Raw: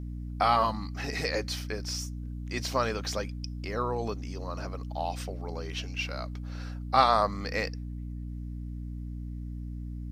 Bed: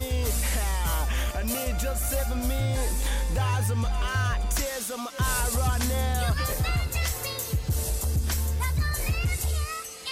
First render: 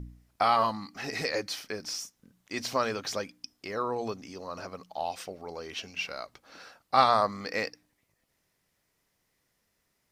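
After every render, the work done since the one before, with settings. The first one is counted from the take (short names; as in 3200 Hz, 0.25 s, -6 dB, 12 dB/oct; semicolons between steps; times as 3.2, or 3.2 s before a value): de-hum 60 Hz, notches 5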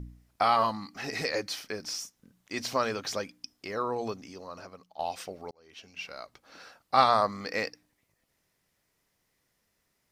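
4.08–4.99 fade out, to -12.5 dB; 5.51–7.02 fade in equal-power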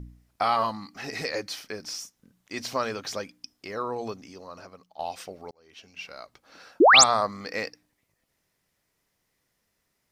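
6.8–7.04 painted sound rise 270–8600 Hz -14 dBFS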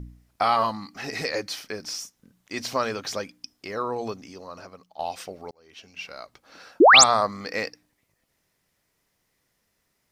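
gain +2.5 dB; limiter -2 dBFS, peak gain reduction 1 dB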